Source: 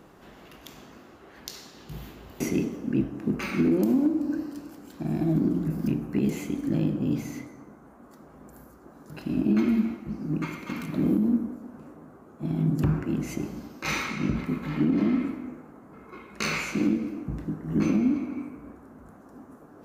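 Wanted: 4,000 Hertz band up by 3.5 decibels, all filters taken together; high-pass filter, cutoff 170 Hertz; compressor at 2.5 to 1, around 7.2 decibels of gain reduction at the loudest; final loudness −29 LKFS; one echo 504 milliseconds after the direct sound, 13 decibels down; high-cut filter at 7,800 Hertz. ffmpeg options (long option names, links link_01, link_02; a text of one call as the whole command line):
ffmpeg -i in.wav -af "highpass=170,lowpass=7800,equalizer=frequency=4000:width_type=o:gain=4.5,acompressor=threshold=-31dB:ratio=2.5,aecho=1:1:504:0.224,volume=5dB" out.wav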